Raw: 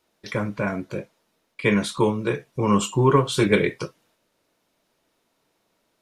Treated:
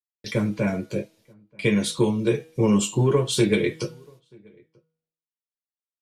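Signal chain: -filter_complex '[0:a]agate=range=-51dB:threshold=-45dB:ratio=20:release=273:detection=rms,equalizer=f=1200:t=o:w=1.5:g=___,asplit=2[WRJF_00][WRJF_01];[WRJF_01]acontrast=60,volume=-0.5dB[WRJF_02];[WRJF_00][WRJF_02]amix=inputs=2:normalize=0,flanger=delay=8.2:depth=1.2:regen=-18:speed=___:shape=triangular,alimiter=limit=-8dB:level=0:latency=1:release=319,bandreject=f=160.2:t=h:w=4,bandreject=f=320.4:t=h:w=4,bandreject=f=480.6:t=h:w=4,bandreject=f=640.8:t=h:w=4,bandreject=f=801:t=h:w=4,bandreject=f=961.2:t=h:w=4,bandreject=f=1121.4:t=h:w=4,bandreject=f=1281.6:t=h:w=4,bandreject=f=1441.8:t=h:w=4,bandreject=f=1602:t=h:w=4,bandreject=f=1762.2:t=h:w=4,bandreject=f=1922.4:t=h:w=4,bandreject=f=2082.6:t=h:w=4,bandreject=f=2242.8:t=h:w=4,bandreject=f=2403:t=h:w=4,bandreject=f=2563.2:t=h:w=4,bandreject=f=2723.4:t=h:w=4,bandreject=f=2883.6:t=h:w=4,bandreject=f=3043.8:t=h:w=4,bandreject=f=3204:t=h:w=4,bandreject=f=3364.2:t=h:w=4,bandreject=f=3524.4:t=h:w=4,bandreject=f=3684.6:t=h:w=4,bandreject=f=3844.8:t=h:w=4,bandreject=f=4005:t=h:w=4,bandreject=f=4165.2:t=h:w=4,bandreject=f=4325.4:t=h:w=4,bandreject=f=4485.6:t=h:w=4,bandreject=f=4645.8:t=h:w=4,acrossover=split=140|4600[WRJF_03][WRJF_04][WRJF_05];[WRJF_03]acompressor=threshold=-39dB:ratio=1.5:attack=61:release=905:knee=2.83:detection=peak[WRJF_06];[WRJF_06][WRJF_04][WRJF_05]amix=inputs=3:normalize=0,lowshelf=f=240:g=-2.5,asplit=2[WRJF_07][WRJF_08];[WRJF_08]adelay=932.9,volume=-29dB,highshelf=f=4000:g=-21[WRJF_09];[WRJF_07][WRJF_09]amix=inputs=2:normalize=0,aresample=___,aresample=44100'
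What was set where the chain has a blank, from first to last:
-14, 0.51, 32000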